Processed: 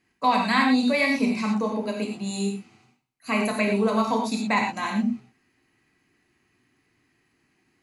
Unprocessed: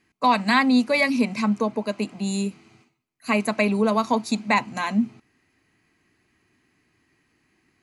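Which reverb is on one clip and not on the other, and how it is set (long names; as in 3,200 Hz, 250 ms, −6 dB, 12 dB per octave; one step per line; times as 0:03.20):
reverb whose tail is shaped and stops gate 140 ms flat, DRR −0.5 dB
level −4.5 dB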